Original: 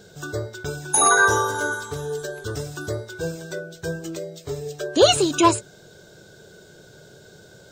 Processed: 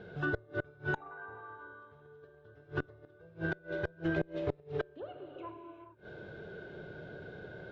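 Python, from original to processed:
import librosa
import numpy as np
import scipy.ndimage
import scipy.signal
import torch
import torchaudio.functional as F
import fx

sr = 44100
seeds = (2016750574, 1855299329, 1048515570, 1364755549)

y = fx.env_lowpass_down(x, sr, base_hz=1800.0, full_db=-13.5)
y = scipy.signal.sosfilt(scipy.signal.butter(4, 2700.0, 'lowpass', fs=sr, output='sos'), y)
y = fx.rev_gated(y, sr, seeds[0], gate_ms=450, shape='flat', drr_db=1.5)
y = fx.gate_flip(y, sr, shuts_db=-20.0, range_db=-29)
y = fx.cheby_harmonics(y, sr, harmonics=(2,), levels_db=(-15,), full_scale_db=-18.5)
y = F.gain(torch.from_numpy(y), -1.0).numpy()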